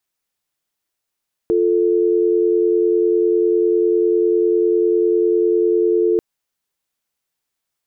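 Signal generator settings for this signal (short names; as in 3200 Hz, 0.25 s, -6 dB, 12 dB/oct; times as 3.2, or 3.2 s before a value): call progress tone dial tone, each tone -15.5 dBFS 4.69 s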